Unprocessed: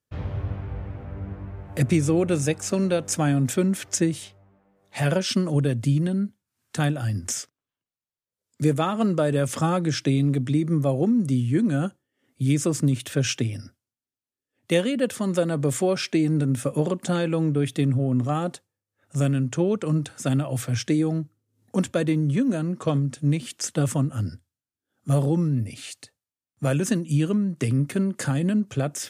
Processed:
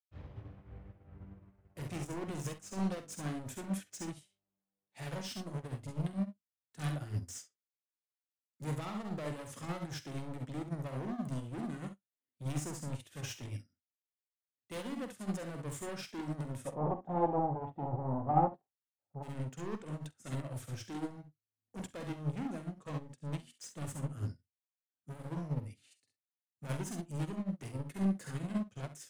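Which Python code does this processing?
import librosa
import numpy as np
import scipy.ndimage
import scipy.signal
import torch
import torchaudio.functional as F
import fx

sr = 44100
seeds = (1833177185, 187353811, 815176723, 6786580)

y = np.clip(x, -10.0 ** (-26.5 / 20.0), 10.0 ** (-26.5 / 20.0))
y = fx.lowpass_res(y, sr, hz=810.0, q=4.9, at=(16.66, 19.22), fade=0.02)
y = fx.doubler(y, sr, ms=46.0, db=-13)
y = fx.room_early_taps(y, sr, ms=(47, 67), db=(-7.5, -6.5))
y = fx.upward_expand(y, sr, threshold_db=-41.0, expansion=2.5)
y = y * 10.0 ** (-2.0 / 20.0)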